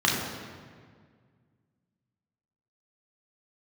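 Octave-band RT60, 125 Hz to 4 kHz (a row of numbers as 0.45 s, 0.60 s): 2.7 s, 2.3 s, 1.9 s, 1.7 s, 1.6 s, 1.3 s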